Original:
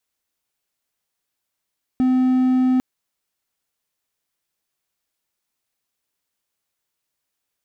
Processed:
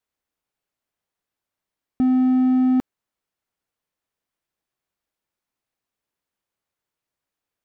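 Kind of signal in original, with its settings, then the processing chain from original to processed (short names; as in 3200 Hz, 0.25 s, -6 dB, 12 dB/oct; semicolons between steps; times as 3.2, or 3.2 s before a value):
tone triangle 256 Hz -12 dBFS 0.80 s
high shelf 2700 Hz -10.5 dB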